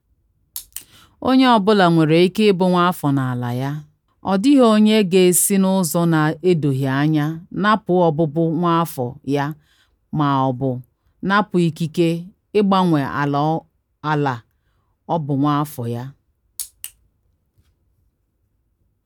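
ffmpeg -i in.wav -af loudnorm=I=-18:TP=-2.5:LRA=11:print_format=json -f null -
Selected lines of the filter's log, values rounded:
"input_i" : "-17.8",
"input_tp" : "-2.3",
"input_lra" : "21.3",
"input_thresh" : "-29.7",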